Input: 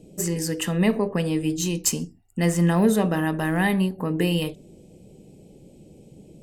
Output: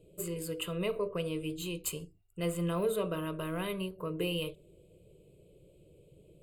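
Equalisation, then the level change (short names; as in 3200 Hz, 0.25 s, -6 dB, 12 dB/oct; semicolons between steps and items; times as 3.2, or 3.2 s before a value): fixed phaser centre 1200 Hz, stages 8; -6.5 dB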